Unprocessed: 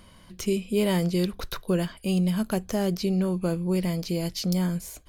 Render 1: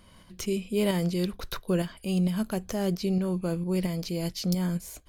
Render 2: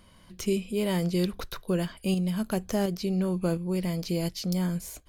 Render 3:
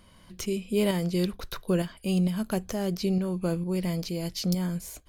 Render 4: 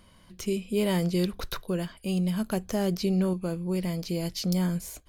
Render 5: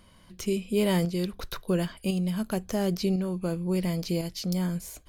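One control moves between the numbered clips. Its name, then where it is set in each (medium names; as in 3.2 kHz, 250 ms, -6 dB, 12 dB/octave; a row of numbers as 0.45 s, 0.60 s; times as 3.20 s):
tremolo, rate: 4.4 Hz, 1.4 Hz, 2.2 Hz, 0.6 Hz, 0.95 Hz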